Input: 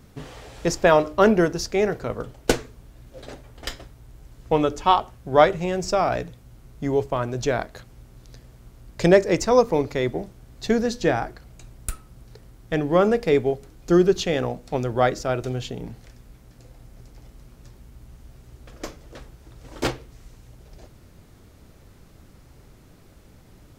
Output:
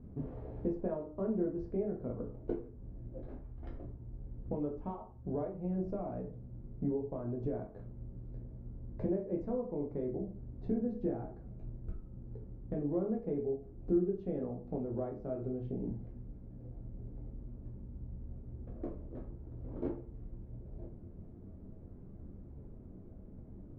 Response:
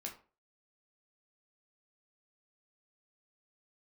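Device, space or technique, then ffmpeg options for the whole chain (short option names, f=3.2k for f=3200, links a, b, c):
television next door: -filter_complex "[0:a]asettb=1/sr,asplit=3[a][b][c];[a]atrim=end=3.204[d];[b]atrim=start=3.2:end=3.69,asetpts=PTS-STARTPTS,afade=t=in:d=0.004:c=qsin,afade=t=out:st=0.486:d=0.004:c=qsin,equalizer=f=125:t=o:w=1:g=-4,equalizer=f=250:t=o:w=1:g=-4,equalizer=f=500:t=o:w=1:g=-11[e];[c]atrim=start=3.686[f];[d][e]acrossfade=d=0.004:c1=hsin:c2=qsin[g];[g][f]acrossfade=d=0.004:c1=qsin:c2=hsin,acompressor=threshold=-33dB:ratio=4,lowpass=450[h];[1:a]atrim=start_sample=2205[i];[h][i]afir=irnorm=-1:irlink=0,volume=3dB"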